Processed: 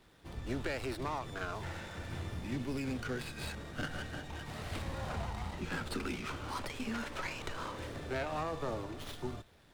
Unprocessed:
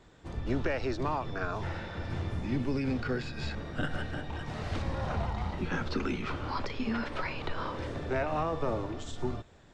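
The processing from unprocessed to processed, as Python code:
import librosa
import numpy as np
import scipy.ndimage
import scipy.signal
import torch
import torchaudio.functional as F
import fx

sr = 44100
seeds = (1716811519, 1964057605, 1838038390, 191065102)

y = scipy.signal.lfilter([1.0, -0.8], [1.0], x)
y = fx.running_max(y, sr, window=5)
y = F.gain(torch.from_numpy(y), 7.5).numpy()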